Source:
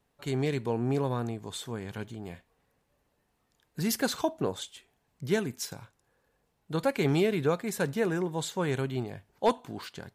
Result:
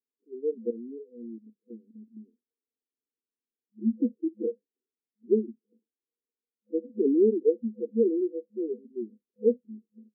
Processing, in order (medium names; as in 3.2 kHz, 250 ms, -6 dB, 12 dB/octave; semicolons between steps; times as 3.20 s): spectral noise reduction 29 dB; 0.70–2.17 s: level held to a coarse grid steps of 15 dB; FFT band-pass 210–500 Hz; trim +6 dB